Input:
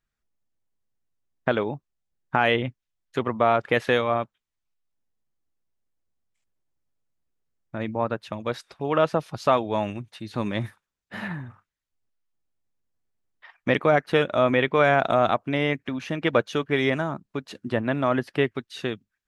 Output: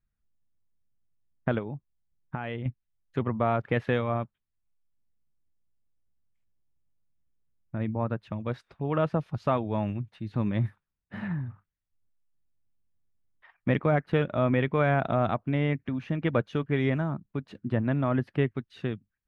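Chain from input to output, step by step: tone controls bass +12 dB, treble -14 dB; 1.58–2.66 s: compression 4:1, threshold -25 dBFS, peak gain reduction 9 dB; trim -7 dB

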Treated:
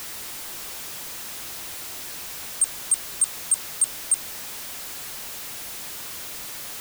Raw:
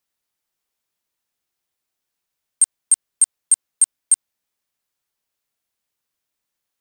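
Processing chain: jump at every zero crossing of -22 dBFS; trim -7 dB

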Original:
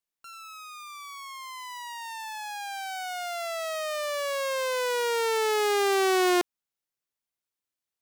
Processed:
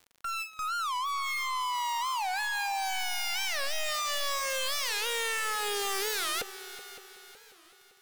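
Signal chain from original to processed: comb filter that takes the minimum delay 4.2 ms; gate with hold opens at -41 dBFS; steep high-pass 470 Hz 48 dB/octave; treble shelf 3.8 kHz -10 dB; peak limiter -25.5 dBFS, peak gain reduction 3.5 dB; sine folder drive 15 dB, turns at -25 dBFS; crackle 29 per s -46 dBFS; hard clipper -34 dBFS, distortion -10 dB; multi-head delay 187 ms, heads second and third, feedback 49%, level -16 dB; warped record 45 rpm, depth 250 cents; trim +3 dB

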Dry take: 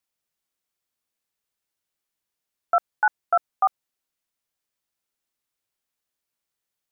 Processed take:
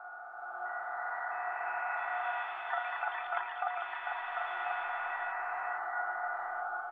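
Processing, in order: spectral levelling over time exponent 0.2; level rider gain up to 9.5 dB; feedback comb 360 Hz, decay 0.58 s, mix 90%; delay 1042 ms -4 dB; reverberation RT60 2.7 s, pre-delay 15 ms, DRR 11.5 dB; ever faster or slower copies 657 ms, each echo +5 st, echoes 3, each echo -6 dB; trim -2 dB

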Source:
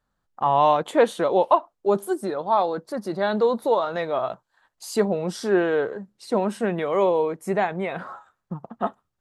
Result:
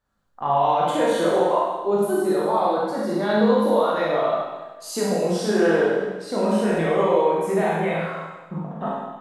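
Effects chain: peak limiter -15.5 dBFS, peak gain reduction 9.5 dB; chorus 0.45 Hz, delay 19 ms, depth 4.8 ms; Schroeder reverb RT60 1.2 s, combs from 33 ms, DRR -4.5 dB; trim +2 dB

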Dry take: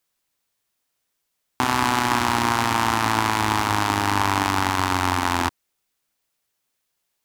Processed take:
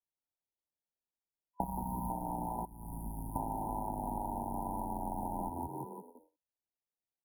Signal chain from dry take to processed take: median filter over 5 samples; 1.64–2.10 s: high-order bell 520 Hz -14 dB; on a send: frequency-shifting echo 173 ms, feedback 39%, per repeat +56 Hz, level -6 dB; on the sum: frequency shift -61 Hz; gate with hold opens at -40 dBFS; 0.98–2.08 s: spectral selection erased 1.3–10 kHz; 2.65–3.36 s: amplifier tone stack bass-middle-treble 6-0-2; compression 16:1, threshold -32 dBFS, peak gain reduction 17.5 dB; FFT band-reject 1–9.3 kHz; trim +1 dB

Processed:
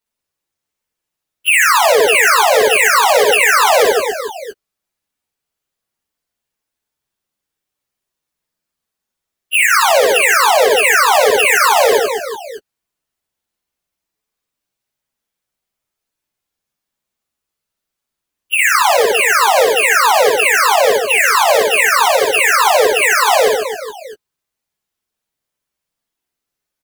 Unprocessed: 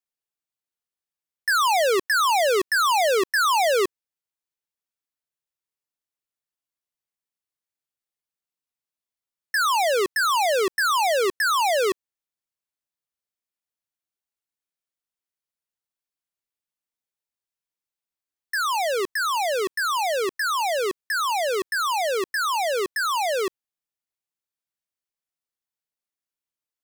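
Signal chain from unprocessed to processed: frequency axis rescaled in octaves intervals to 124%; reverse bouncing-ball echo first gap 60 ms, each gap 1.4×, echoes 5; loudness maximiser +18.5 dB; trim -1 dB

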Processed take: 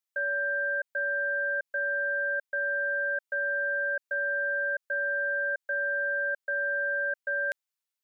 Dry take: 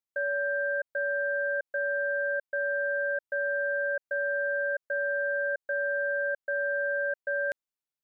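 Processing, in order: high-pass 1.4 kHz 6 dB/octave; trim +4.5 dB

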